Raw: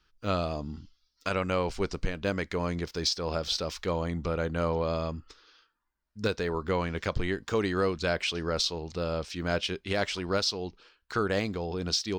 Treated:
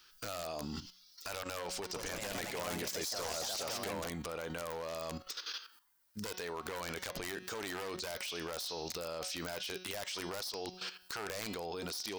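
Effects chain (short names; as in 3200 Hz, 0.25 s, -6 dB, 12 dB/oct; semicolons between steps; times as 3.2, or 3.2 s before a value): one-sided fold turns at -24.5 dBFS; RIAA curve recording; notch 7000 Hz, Q 30; de-hum 183.9 Hz, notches 34; dynamic EQ 710 Hz, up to +4 dB, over -43 dBFS, Q 1.1; compressor 6:1, threshold -40 dBFS, peak gain reduction 21.5 dB; limiter -36.5 dBFS, peak gain reduction 14 dB; level quantiser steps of 11 dB; wrapped overs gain 43.5 dB; 1.77–4.31 echoes that change speed 0.174 s, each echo +3 st, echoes 2; gain +14.5 dB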